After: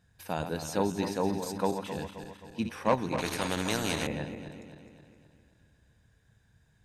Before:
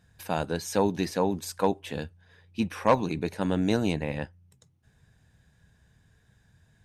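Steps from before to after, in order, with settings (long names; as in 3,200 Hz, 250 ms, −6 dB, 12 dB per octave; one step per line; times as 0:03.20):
feedback delay that plays each chunk backwards 132 ms, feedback 70%, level −8 dB
0:03.18–0:04.07: every bin compressed towards the loudest bin 2 to 1
level −4.5 dB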